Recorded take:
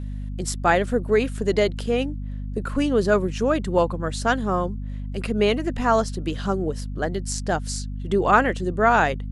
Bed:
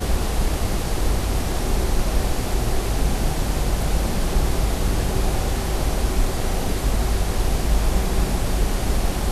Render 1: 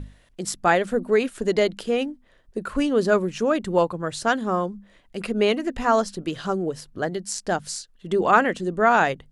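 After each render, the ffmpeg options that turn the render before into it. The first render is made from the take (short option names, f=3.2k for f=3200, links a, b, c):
-af "bandreject=f=50:t=h:w=6,bandreject=f=100:t=h:w=6,bandreject=f=150:t=h:w=6,bandreject=f=200:t=h:w=6,bandreject=f=250:t=h:w=6"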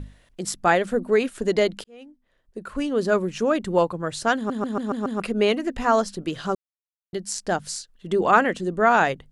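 -filter_complex "[0:a]asplit=10[a][b][c][d][e][f][g][h][i][j];[a]atrim=end=1.84,asetpts=PTS-STARTPTS,afade=t=out:st=1.836:d=0.004:c=hsin[k];[b]atrim=start=1.84:end=4.502,asetpts=PTS-STARTPTS,afade=t=in:d=1.53[l];[c]atrim=start=4.358:end=4.502[m];[d]atrim=start=4.358:end=4.502[n];[e]atrim=start=4.358:end=4.502[o];[f]atrim=start=4.358:end=4.502[p];[g]atrim=start=4.358:end=4.502[q];[h]atrim=start=5.198:end=6.55,asetpts=PTS-STARTPTS,afade=t=out:st=1.348:d=0.004:c=hsin[r];[i]atrim=start=6.55:end=7.13,asetpts=PTS-STARTPTS,volume=0[s];[j]atrim=start=7.13,asetpts=PTS-STARTPTS,afade=t=in:d=0.004:c=hsin[t];[k][l]concat=n=2:v=0:a=1[u];[u][m]acrossfade=d=0.004:c1=hsin:c2=hsin[v];[v][n]acrossfade=d=0.004:c1=hsin:c2=hsin[w];[w][o]acrossfade=d=0.004:c1=hsin:c2=hsin[x];[x][p]acrossfade=d=0.004:c1=hsin:c2=hsin[y];[y][q]acrossfade=d=0.004:c1=hsin:c2=hsin[z];[r][s][t]concat=n=3:v=0:a=1[aa];[z][aa]acrossfade=d=0.004:c1=hsin:c2=hsin"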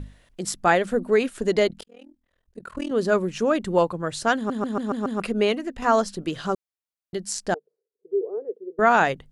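-filter_complex "[0:a]asettb=1/sr,asplit=3[a][b][c];[a]atrim=end=1.684[d];[b]atrim=start=1.68:end=2.91,asetpts=PTS-STARTPTS,afade=t=in:d=0.004:c=qsin,afade=t=out:st=1.226:d=0.004:c=qsin,tremolo=f=41:d=0.974[e];[c]atrim=start=2.906[f];[d][e]acrossfade=d=0.004:c1=hsin:c2=qsin[g];[g][f]acrossfade=d=0.004:c1=qsin:c2=hsin,asettb=1/sr,asplit=3[h][i][j];[h]atrim=end=7.544[k];[i]atrim=start=7.54:end=8.79,asetpts=PTS-STARTPTS,afade=t=in:d=0.004:c=qsin,afade=t=out:st=1.246:d=0.004:c=qsin,asuperpass=centerf=430:order=4:qfactor=4.7[l];[j]atrim=start=8.786[m];[k][l]acrossfade=d=0.004:c1=hsin:c2=qsin[n];[n][m]acrossfade=d=0.004:c1=qsin:c2=hsin,asplit=2[o][p];[o]atrim=end=5.82,asetpts=PTS-STARTPTS,afade=t=out:st=5.34:d=0.48:silence=0.446684[q];[p]atrim=start=5.82,asetpts=PTS-STARTPTS,afade=t=in:d=0.004:c=hsin:silence=0.446684[r];[q][r]concat=n=2:v=0:a=1"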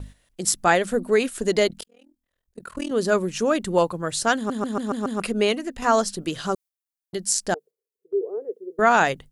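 -af "agate=range=-8dB:threshold=-42dB:ratio=16:detection=peak,highshelf=f=5.4k:g=12"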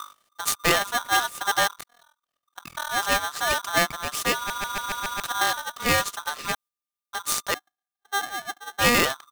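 -af "aeval=exprs='if(lt(val(0),0),0.251*val(0),val(0))':c=same,aeval=exprs='val(0)*sgn(sin(2*PI*1200*n/s))':c=same"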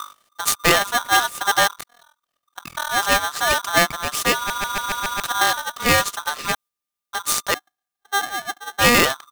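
-af "volume=5dB,alimiter=limit=-1dB:level=0:latency=1"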